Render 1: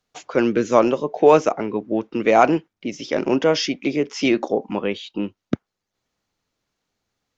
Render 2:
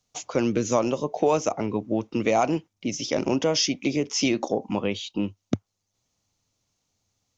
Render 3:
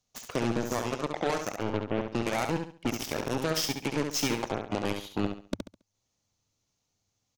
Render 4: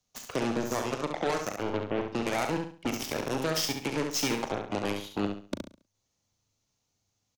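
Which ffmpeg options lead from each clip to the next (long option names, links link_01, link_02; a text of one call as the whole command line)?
ffmpeg -i in.wav -af "equalizer=frequency=100:width_type=o:width=0.67:gain=9,equalizer=frequency=400:width_type=o:width=0.67:gain=-4,equalizer=frequency=1600:width_type=o:width=0.67:gain=-8,equalizer=frequency=6300:width_type=o:width=0.67:gain=9,acompressor=threshold=-20dB:ratio=2.5" out.wav
ffmpeg -i in.wav -filter_complex "[0:a]alimiter=limit=-18dB:level=0:latency=1:release=318,aeval=exprs='0.126*(cos(1*acos(clip(val(0)/0.126,-1,1)))-cos(1*PI/2))+0.02*(cos(3*acos(clip(val(0)/0.126,-1,1)))-cos(3*PI/2))+0.0141*(cos(4*acos(clip(val(0)/0.126,-1,1)))-cos(4*PI/2))+0.00708*(cos(6*acos(clip(val(0)/0.126,-1,1)))-cos(6*PI/2))+0.02*(cos(7*acos(clip(val(0)/0.126,-1,1)))-cos(7*PI/2))':channel_layout=same,asplit=2[link_01][link_02];[link_02]aecho=0:1:69|138|207|276:0.501|0.15|0.0451|0.0135[link_03];[link_01][link_03]amix=inputs=2:normalize=0" out.wav
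ffmpeg -i in.wav -filter_complex "[0:a]acrossover=split=200[link_01][link_02];[link_01]asoftclip=type=tanh:threshold=-37dB[link_03];[link_03][link_02]amix=inputs=2:normalize=0,asplit=2[link_04][link_05];[link_05]adelay=39,volume=-11dB[link_06];[link_04][link_06]amix=inputs=2:normalize=0" out.wav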